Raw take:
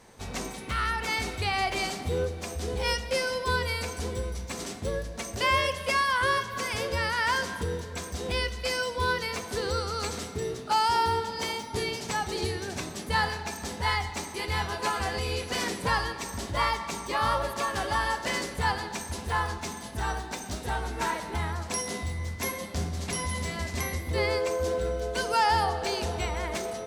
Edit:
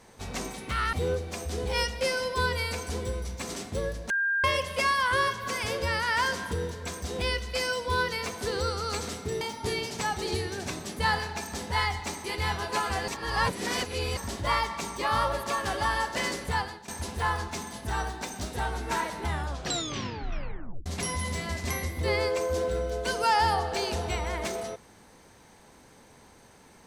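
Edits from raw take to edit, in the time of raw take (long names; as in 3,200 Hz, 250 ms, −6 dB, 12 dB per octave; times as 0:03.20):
0:00.93–0:02.03: remove
0:05.20–0:05.54: beep over 1,600 Hz −23.5 dBFS
0:10.51–0:11.51: remove
0:15.18–0:16.27: reverse
0:18.57–0:18.98: fade out, to −17.5 dB
0:21.35: tape stop 1.61 s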